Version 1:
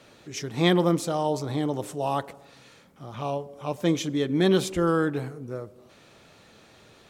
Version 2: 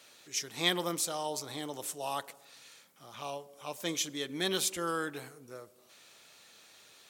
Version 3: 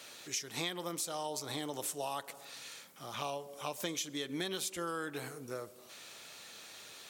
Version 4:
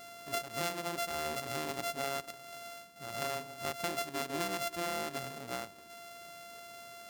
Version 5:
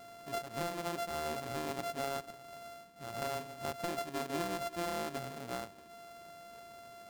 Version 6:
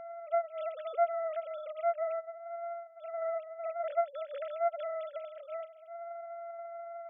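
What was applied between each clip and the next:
tilt EQ +4 dB/octave; trim -7.5 dB
compression 8:1, threshold -41 dBFS, peak gain reduction 18 dB; trim +6.5 dB
sorted samples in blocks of 64 samples; trim +2 dB
median filter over 25 samples; trim +1 dB
formants replaced by sine waves; trim +4 dB

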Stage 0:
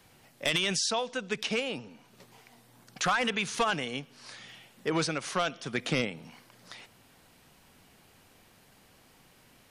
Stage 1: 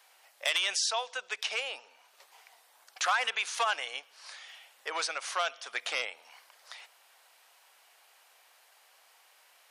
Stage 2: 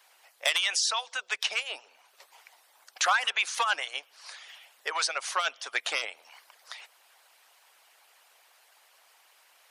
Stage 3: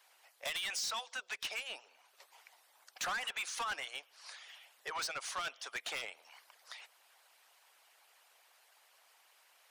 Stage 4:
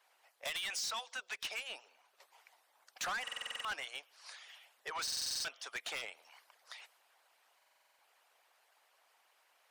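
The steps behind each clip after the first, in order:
high-pass 640 Hz 24 dB/octave
harmonic-percussive split harmonic -16 dB; trim +5.5 dB
saturation -28 dBFS, distortion -8 dB; trim -5.5 dB
buffer glitch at 3.23/5.03/7.57 s, samples 2048, times 8; tape noise reduction on one side only decoder only; trim -1 dB

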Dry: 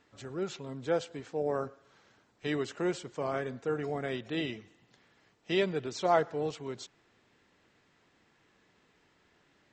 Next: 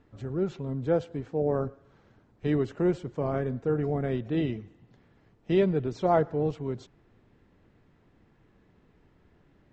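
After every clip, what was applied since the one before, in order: tilt EQ -4 dB/octave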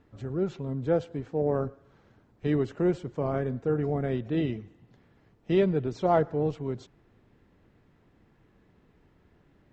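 Chebyshev shaper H 6 -38 dB, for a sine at -11.5 dBFS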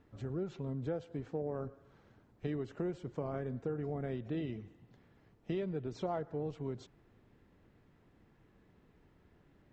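compression 5:1, threshold -31 dBFS, peak gain reduction 12 dB; trim -3.5 dB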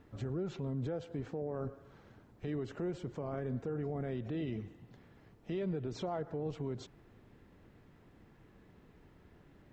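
peak limiter -34.5 dBFS, peak gain reduction 9.5 dB; trim +5 dB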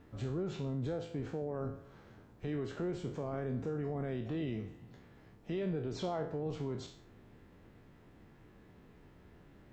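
spectral sustain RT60 0.46 s

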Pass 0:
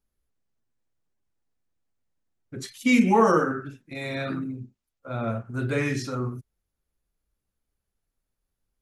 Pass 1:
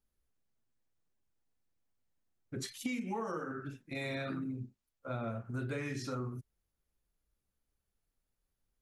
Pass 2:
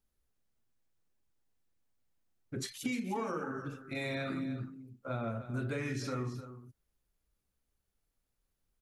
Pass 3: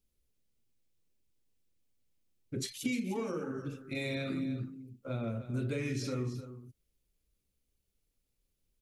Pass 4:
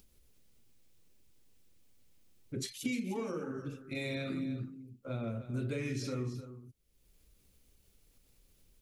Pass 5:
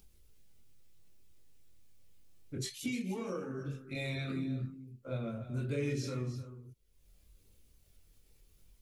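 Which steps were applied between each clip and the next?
compression 16:1, threshold -31 dBFS, peak gain reduction 18.5 dB; trim -3 dB
delay 305 ms -12.5 dB; trim +1.5 dB
high-order bell 1.1 kHz -8.5 dB; trim +2 dB
upward compressor, threshold -49 dBFS; trim -1.5 dB
chorus voices 6, 0.31 Hz, delay 22 ms, depth 1.5 ms; trim +2.5 dB

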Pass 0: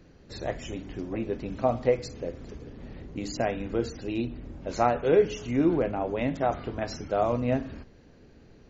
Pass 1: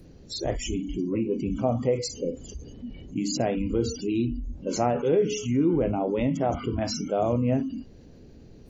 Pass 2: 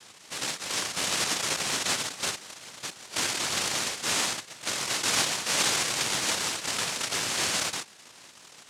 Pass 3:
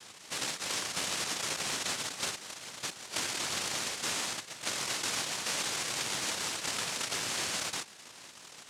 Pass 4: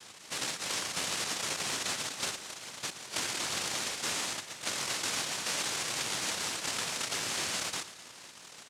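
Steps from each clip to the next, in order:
peaking EQ 1.5 kHz -11 dB 2.3 oct; spectral noise reduction 24 dB; level flattener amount 50%
peak limiter -20 dBFS, peak gain reduction 8.5 dB; decimation with a swept rate 23×, swing 100% 2.9 Hz; noise-vocoded speech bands 1
compression, threshold -31 dBFS, peak gain reduction 10 dB
feedback delay 114 ms, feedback 55%, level -15 dB

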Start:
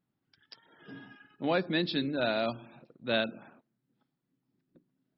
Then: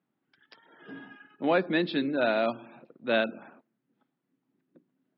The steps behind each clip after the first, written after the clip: three-band isolator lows -21 dB, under 170 Hz, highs -22 dB, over 3.4 kHz; trim +4.5 dB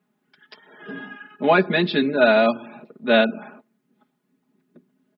comb 4.8 ms, depth 96%; trim +6.5 dB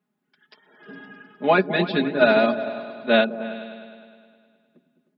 delay with an opening low-pass 103 ms, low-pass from 200 Hz, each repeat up 2 oct, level -6 dB; upward expansion 1.5:1, over -25 dBFS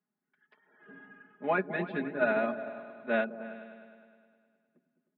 four-pole ladder low-pass 2.5 kHz, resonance 30%; trim -5 dB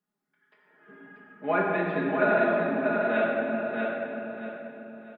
feedback delay 638 ms, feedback 31%, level -4.5 dB; simulated room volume 120 m³, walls hard, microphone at 0.55 m

